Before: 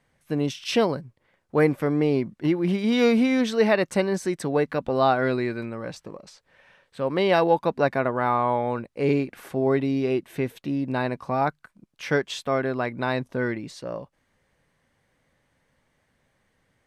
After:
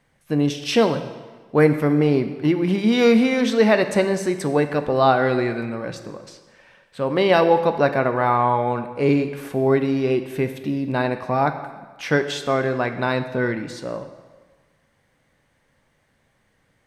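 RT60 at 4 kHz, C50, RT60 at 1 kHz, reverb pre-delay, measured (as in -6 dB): 1.2 s, 10.0 dB, 1.4 s, 8 ms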